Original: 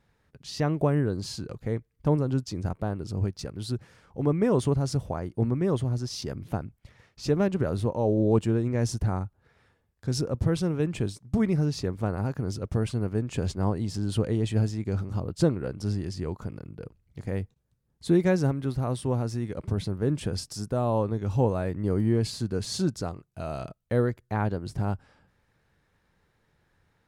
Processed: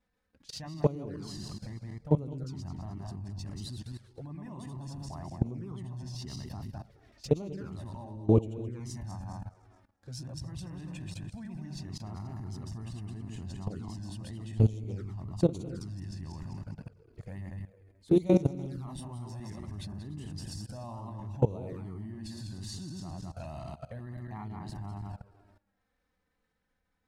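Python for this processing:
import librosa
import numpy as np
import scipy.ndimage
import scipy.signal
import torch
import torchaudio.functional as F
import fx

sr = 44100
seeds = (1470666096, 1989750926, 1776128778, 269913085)

y = fx.reverse_delay_fb(x, sr, ms=106, feedback_pct=55, wet_db=-3.0)
y = fx.level_steps(y, sr, step_db=19)
y = y + 10.0 ** (-21.0 / 20.0) * np.pad(y, (int(294 * sr / 1000.0), 0))[:len(y)]
y = fx.env_flanger(y, sr, rest_ms=4.0, full_db=-28.5)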